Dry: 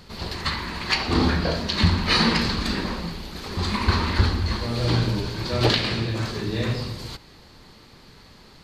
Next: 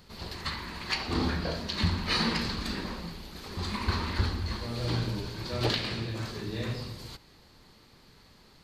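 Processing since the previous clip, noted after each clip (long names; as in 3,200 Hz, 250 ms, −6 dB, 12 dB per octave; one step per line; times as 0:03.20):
high-shelf EQ 11,000 Hz +7 dB
level −8.5 dB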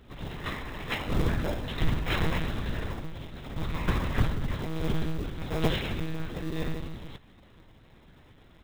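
one-pitch LPC vocoder at 8 kHz 160 Hz
in parallel at −5 dB: sample-rate reduction 1,500 Hz, jitter 0%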